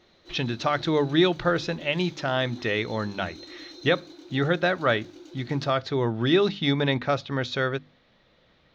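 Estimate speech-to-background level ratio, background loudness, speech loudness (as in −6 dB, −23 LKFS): 20.0 dB, −45.5 LKFS, −25.5 LKFS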